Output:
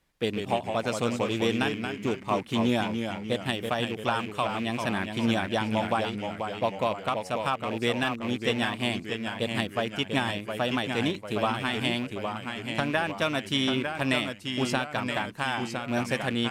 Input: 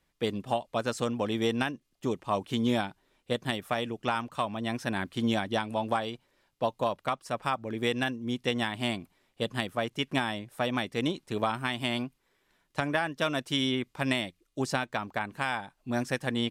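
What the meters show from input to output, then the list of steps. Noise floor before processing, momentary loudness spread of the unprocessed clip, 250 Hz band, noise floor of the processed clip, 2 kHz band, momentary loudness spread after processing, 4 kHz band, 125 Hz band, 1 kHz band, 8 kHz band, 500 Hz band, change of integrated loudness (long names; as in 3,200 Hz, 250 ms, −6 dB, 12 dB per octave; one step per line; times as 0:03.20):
−75 dBFS, 6 LU, +2.5 dB, −43 dBFS, +3.0 dB, 5 LU, +3.0 dB, +3.0 dB, +2.5 dB, +2.5 dB, +2.5 dB, +2.5 dB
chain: loose part that buzzes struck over −39 dBFS, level −30 dBFS
delay with pitch and tempo change per echo 133 ms, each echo −1 semitone, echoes 3, each echo −6 dB
level +1.5 dB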